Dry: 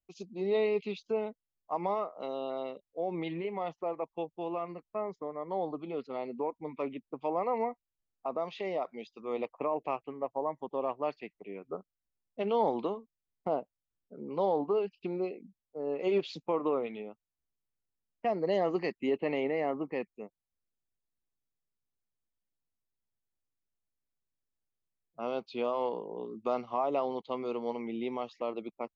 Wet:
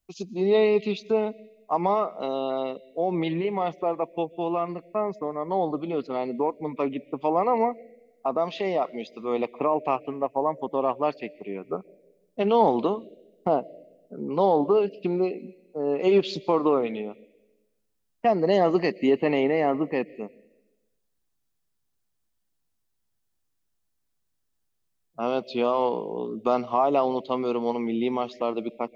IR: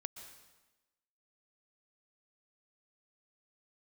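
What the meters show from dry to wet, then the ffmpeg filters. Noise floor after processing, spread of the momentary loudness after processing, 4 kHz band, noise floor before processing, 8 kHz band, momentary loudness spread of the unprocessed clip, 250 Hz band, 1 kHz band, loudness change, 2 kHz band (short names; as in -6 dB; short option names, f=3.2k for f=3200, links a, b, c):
-75 dBFS, 12 LU, +9.5 dB, under -85 dBFS, n/a, 11 LU, +10.0 dB, +9.0 dB, +8.5 dB, +8.0 dB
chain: -filter_complex "[0:a]asplit=2[a][b];[b]asuperstop=centerf=1100:order=12:qfactor=0.94[c];[1:a]atrim=start_sample=2205[d];[c][d]afir=irnorm=-1:irlink=0,volume=-9dB[e];[a][e]amix=inputs=2:normalize=0,volume=9dB"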